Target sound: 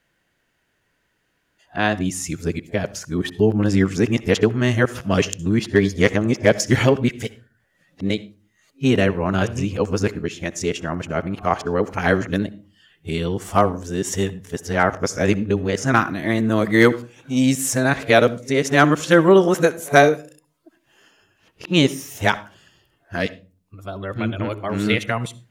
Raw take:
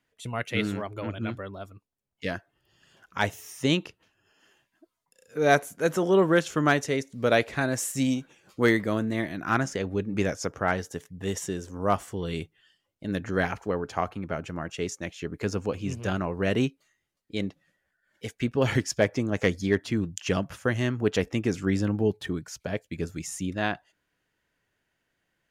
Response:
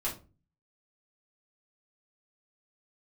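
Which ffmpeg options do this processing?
-filter_complex "[0:a]areverse,asplit=2[link_01][link_02];[1:a]atrim=start_sample=2205,adelay=62[link_03];[link_02][link_03]afir=irnorm=-1:irlink=0,volume=-22dB[link_04];[link_01][link_04]amix=inputs=2:normalize=0,volume=8dB"

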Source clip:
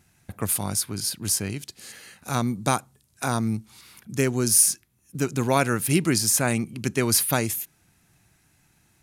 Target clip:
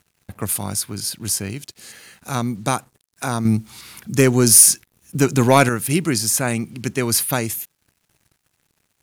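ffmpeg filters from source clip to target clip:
ffmpeg -i in.wav -filter_complex "[0:a]asettb=1/sr,asplit=3[link_01][link_02][link_03];[link_01]atrim=end=3.454[link_04];[link_02]atrim=start=3.45:end=5.69,asetpts=PTS-STARTPTS,afade=type=in:duration=0.004:curve=qsin,afade=type=out:start_time=2.236:duration=0.004:curve=qsin,acontrast=89[link_05];[link_03]atrim=start=5.686[link_06];[link_04][link_05]acrossfade=duration=0.004:curve1=hsin:curve2=qsin[link_07];[link_07][link_06]acrossfade=duration=0.004:curve1=qsin:curve2=hsin,acrusher=bits=8:mix=0:aa=0.5,volume=2dB" out.wav

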